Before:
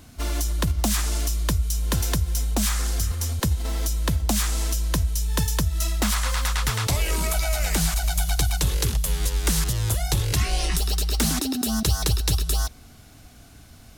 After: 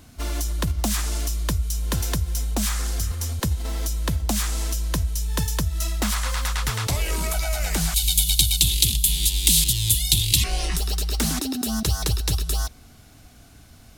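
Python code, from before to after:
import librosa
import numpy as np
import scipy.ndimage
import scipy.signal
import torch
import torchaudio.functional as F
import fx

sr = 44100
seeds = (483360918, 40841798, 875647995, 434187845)

y = fx.curve_eq(x, sr, hz=(230.0, 330.0, 610.0, 870.0, 1400.0, 2400.0, 3600.0, 5700.0, 8300.0), db=(0, -3, -30, -9, -21, 4, 15, 5, 11), at=(7.94, 10.44))
y = y * librosa.db_to_amplitude(-1.0)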